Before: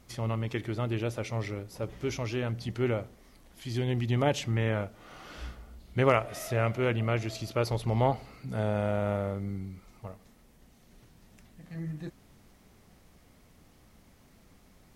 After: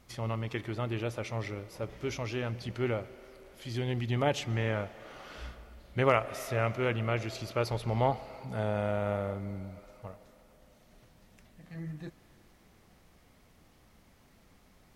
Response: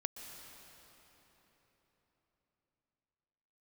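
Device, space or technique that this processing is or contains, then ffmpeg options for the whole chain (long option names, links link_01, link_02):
filtered reverb send: -filter_complex "[0:a]asplit=2[link_01][link_02];[link_02]highpass=400,lowpass=5600[link_03];[1:a]atrim=start_sample=2205[link_04];[link_03][link_04]afir=irnorm=-1:irlink=0,volume=-7.5dB[link_05];[link_01][link_05]amix=inputs=2:normalize=0,volume=-3dB"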